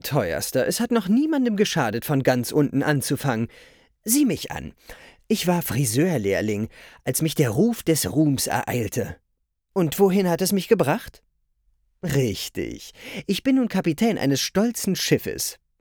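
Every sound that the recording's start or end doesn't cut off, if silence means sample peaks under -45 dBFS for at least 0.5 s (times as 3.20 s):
9.76–11.17 s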